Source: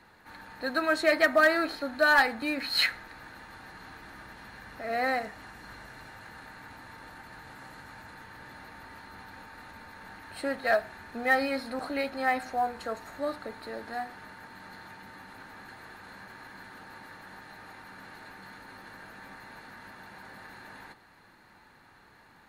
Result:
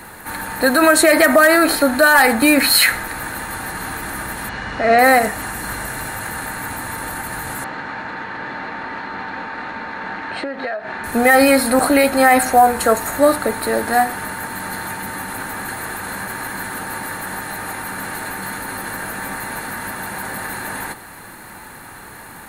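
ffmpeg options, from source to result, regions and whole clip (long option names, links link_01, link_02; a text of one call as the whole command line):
ffmpeg -i in.wav -filter_complex "[0:a]asettb=1/sr,asplit=3[link_01][link_02][link_03];[link_01]atrim=end=4.494[link_04];[link_02]atrim=start=4.49:end=4.99,asetpts=PTS-STARTPTS,afade=type=in:duration=0.004:curve=qsin,afade=type=out:start_time=0.496:duration=0.004:curve=qsin,lowpass=frequency=5800:width=0.5412,lowpass=frequency=5800:width=1.3066,aeval=exprs='val(0)+0.000794*sin(2*PI*2900*n/s)':channel_layout=same[link_05];[link_03]atrim=start=4.986[link_06];[link_04][link_05]acrossfade=duration=0.004:curve1=hsin:curve2=qsin[link_07];[link_07][link_06]acrossfade=duration=0.004:curve1=qsin:curve2=hsin,asettb=1/sr,asplit=3[link_08][link_09][link_10];[link_08]atrim=end=7.644[link_11];[link_09]atrim=start=7.64:end=11.04,asetpts=PTS-STARTPTS,afade=type=in:duration=0.004:curve=qsin,afade=type=out:start_time=3.396:duration=0.004:curve=qsin,lowpass=frequency=5600:width=0.5412,lowpass=frequency=5600:width=1.3066,acrossover=split=160 4200:gain=0.178 1 0.2[link_12][link_13][link_14];[link_12][link_13][link_14]amix=inputs=3:normalize=0,acompressor=threshold=-41dB:ratio=12:attack=3.2:release=140:knee=1:detection=peak[link_15];[link_10]atrim=start=11.036[link_16];[link_11][link_15]acrossfade=duration=0.004:curve1=hsin:curve2=qsin[link_17];[link_17][link_16]acrossfade=duration=0.004:curve1=qsin:curve2=hsin,highshelf=frequency=6900:width_type=q:width=1.5:gain=12,alimiter=level_in=22dB:limit=-1dB:release=50:level=0:latency=1,volume=-2dB" out.wav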